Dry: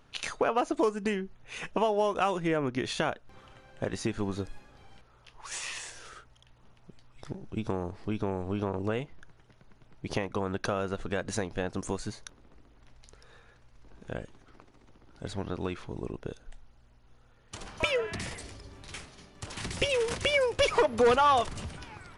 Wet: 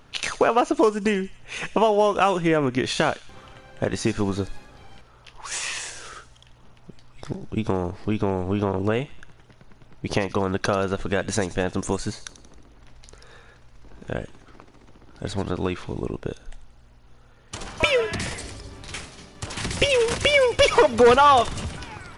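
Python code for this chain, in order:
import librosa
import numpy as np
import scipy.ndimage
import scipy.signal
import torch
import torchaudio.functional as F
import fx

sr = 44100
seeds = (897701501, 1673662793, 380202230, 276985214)

y = fx.echo_wet_highpass(x, sr, ms=90, feedback_pct=50, hz=3300.0, wet_db=-11.5)
y = y * 10.0 ** (8.0 / 20.0)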